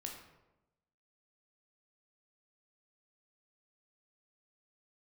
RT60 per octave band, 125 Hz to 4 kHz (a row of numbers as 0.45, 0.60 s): 1.1, 1.1, 1.1, 0.90, 0.75, 0.55 s